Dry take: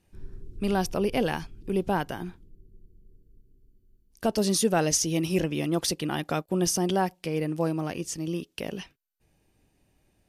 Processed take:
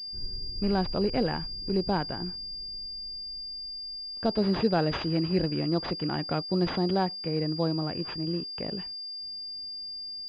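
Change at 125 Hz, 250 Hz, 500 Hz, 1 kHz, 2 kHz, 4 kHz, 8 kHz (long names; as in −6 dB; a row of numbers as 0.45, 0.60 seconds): +0.5 dB, 0.0 dB, −1.5 dB, −2.0 dB, −3.5 dB, +5.0 dB, below −30 dB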